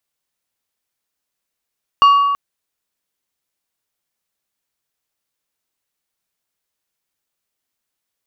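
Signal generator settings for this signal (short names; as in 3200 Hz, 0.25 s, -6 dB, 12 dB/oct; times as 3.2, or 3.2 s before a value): glass hit plate, length 0.33 s, lowest mode 1130 Hz, decay 1.78 s, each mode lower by 12 dB, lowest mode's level -5 dB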